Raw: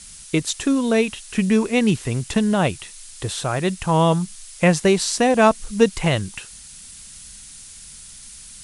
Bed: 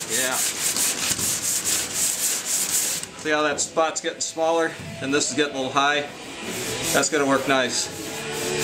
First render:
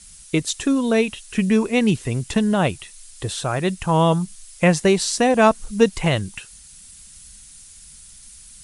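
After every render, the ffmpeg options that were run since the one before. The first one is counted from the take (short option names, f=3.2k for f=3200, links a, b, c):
-af "afftdn=nr=6:nf=-41"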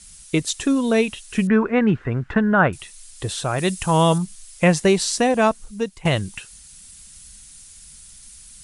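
-filter_complex "[0:a]asettb=1/sr,asplit=3[a][b][c];[a]atrim=end=1.474[d];[b]atrim=start=1.47:end=2.73,asetpts=PTS-STARTPTS,afade=t=in:d=0.004:c=qsin,afade=t=out:st=1.256:d=0.004:c=qsin,lowpass=f=1.5k:t=q:w=4.3[e];[c]atrim=start=2.726[f];[d][e]acrossfade=d=0.004:c1=hsin:c2=qsin[g];[g][f]acrossfade=d=0.004:c1=qsin:c2=hsin,asettb=1/sr,asplit=3[h][i][j];[h]atrim=end=3.584[k];[i]atrim=start=3.58:end=4.18,asetpts=PTS-STARTPTS,afade=t=in:d=0.004:c=qsin,afade=t=out:st=0.596:d=0.004:c=qsin,highshelf=f=4.3k:g=10[l];[j]atrim=start=4.176[m];[k][l]acrossfade=d=0.004:c1=hsin:c2=qsin[n];[n][m]acrossfade=d=0.004:c1=qsin:c2=hsin,asplit=2[o][p];[o]atrim=end=6.05,asetpts=PTS-STARTPTS,afade=t=out:st=5.13:d=0.92:silence=0.133352[q];[p]atrim=start=6.05,asetpts=PTS-STARTPTS,afade=t=in:d=0.004:c=hsin:silence=0.133352[r];[q][r]concat=n=2:v=0:a=1"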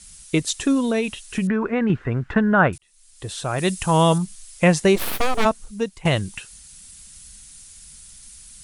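-filter_complex "[0:a]asettb=1/sr,asplit=3[a][b][c];[a]atrim=end=0.834[d];[b]atrim=start=0.83:end=1.9,asetpts=PTS-STARTPTS,afade=t=in:d=0.004:c=qsin,afade=t=out:st=1.066:d=0.004:c=qsin,acompressor=threshold=-17dB:ratio=6:attack=3.2:release=140:knee=1:detection=peak[e];[c]atrim=start=1.896[f];[d][e]acrossfade=d=0.004:c1=hsin:c2=qsin[g];[g][f]acrossfade=d=0.004:c1=qsin:c2=hsin,asplit=3[h][i][j];[h]afade=t=out:st=4.95:d=0.02[k];[i]aeval=exprs='abs(val(0))':c=same,afade=t=in:st=4.95:d=0.02,afade=t=out:st=5.44:d=0.02[l];[j]afade=t=in:st=5.44:d=0.02[m];[k][l][m]amix=inputs=3:normalize=0,asplit=2[n][o];[n]atrim=end=2.78,asetpts=PTS-STARTPTS,afade=t=out:st=2.776:d=0.004:c=hsin[p];[o]atrim=start=2.78,asetpts=PTS-STARTPTS,afade=t=in:d=0.89[q];[p][q]concat=n=2:v=0:a=1"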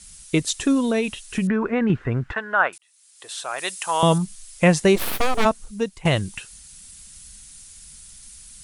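-filter_complex "[0:a]asettb=1/sr,asplit=3[a][b][c];[a]atrim=end=2.324[d];[b]atrim=start=2.32:end=4.03,asetpts=PTS-STARTPTS,afade=t=in:d=0.004:c=qsin,afade=t=out:st=1.706:d=0.004:c=qsin,highpass=770[e];[c]atrim=start=4.026[f];[d][e]acrossfade=d=0.004:c1=hsin:c2=qsin[g];[g][f]acrossfade=d=0.004:c1=qsin:c2=hsin"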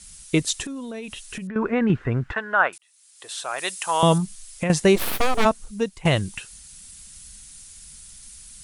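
-filter_complex "[0:a]asettb=1/sr,asplit=3[a][b][c];[a]atrim=end=0.624[d];[b]atrim=start=0.62:end=1.56,asetpts=PTS-STARTPTS,afade=t=in:d=0.004:c=qsin,afade=t=out:st=0.936:d=0.004:c=qsin,acompressor=threshold=-30dB:ratio=10:attack=3.2:release=140:knee=1:detection=peak[e];[c]atrim=start=1.556[f];[d][e]acrossfade=d=0.004:c1=hsin:c2=qsin[g];[g][f]acrossfade=d=0.004:c1=qsin:c2=hsin,asettb=1/sr,asplit=3[h][i][j];[h]atrim=end=4.204[k];[i]atrim=start=4.2:end=4.7,asetpts=PTS-STARTPTS,afade=t=in:d=0.004:c=qsin,afade=t=out:st=0.496:d=0.004:c=qsin,acompressor=threshold=-21dB:ratio=6:attack=3.2:release=140:knee=1:detection=peak[l];[j]atrim=start=4.696[m];[k][l]acrossfade=d=0.004:c1=hsin:c2=qsin[n];[n][m]acrossfade=d=0.004:c1=qsin:c2=hsin"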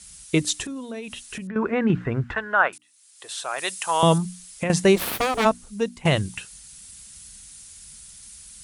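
-af "highpass=42,bandreject=f=60:t=h:w=6,bandreject=f=120:t=h:w=6,bandreject=f=180:t=h:w=6,bandreject=f=240:t=h:w=6,bandreject=f=300:t=h:w=6"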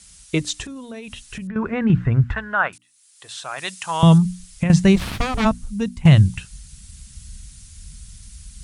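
-filter_complex "[0:a]acrossover=split=8300[a][b];[b]acompressor=threshold=-52dB:ratio=4:attack=1:release=60[c];[a][c]amix=inputs=2:normalize=0,asubboost=boost=10:cutoff=140"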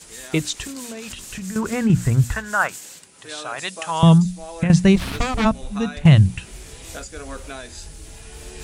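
-filter_complex "[1:a]volume=-15.5dB[a];[0:a][a]amix=inputs=2:normalize=0"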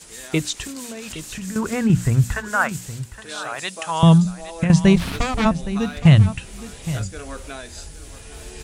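-af "aecho=1:1:816:0.188"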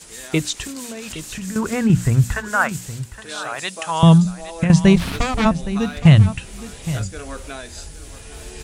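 -af "volume=1.5dB,alimiter=limit=-1dB:level=0:latency=1"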